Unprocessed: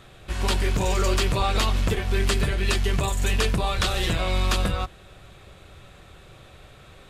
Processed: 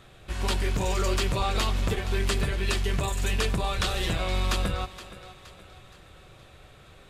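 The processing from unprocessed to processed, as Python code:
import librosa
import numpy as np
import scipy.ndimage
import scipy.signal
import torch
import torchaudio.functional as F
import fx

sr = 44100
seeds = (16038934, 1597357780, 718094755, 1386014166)

y = fx.echo_thinned(x, sr, ms=470, feedback_pct=47, hz=200.0, wet_db=-14.5)
y = y * 10.0 ** (-3.5 / 20.0)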